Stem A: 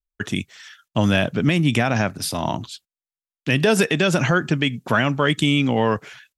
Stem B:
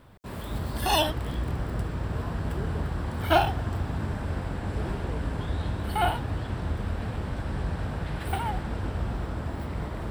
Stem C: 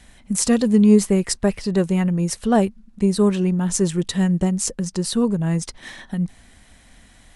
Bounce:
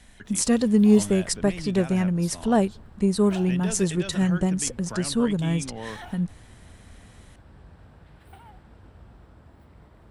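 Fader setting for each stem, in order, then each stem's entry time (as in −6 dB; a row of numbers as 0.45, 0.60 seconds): −17.5, −19.0, −3.5 decibels; 0.00, 0.00, 0.00 seconds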